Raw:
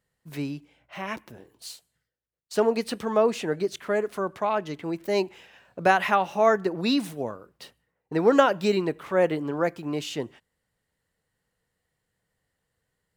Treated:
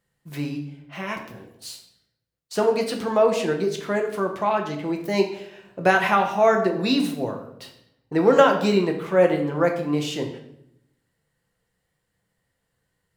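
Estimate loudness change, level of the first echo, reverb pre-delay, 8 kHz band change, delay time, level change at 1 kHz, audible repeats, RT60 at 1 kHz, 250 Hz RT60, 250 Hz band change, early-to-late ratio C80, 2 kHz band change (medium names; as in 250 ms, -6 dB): +3.5 dB, no echo, 6 ms, +3.0 dB, no echo, +2.5 dB, no echo, 0.70 s, 1.1 s, +4.0 dB, 11.0 dB, +3.5 dB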